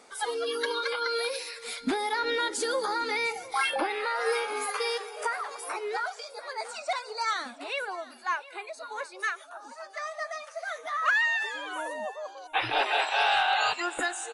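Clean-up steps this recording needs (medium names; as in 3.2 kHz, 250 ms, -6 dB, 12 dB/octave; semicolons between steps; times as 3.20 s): inverse comb 706 ms -18 dB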